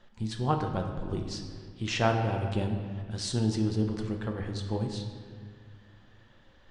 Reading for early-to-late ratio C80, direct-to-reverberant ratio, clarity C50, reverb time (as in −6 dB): 7.0 dB, 2.5 dB, 5.5 dB, 1.9 s